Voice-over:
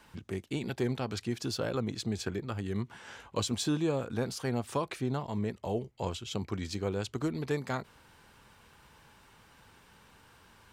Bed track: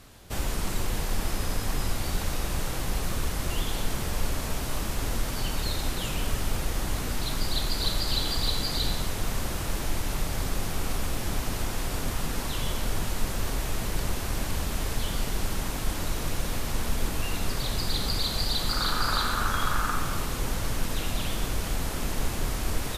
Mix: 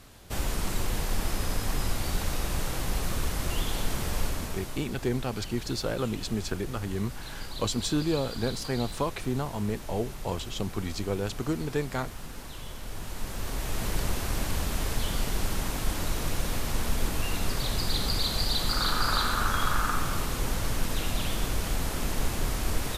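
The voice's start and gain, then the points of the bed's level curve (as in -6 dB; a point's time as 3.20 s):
4.25 s, +2.5 dB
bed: 4.21 s -0.5 dB
4.92 s -11 dB
12.78 s -11 dB
13.87 s 0 dB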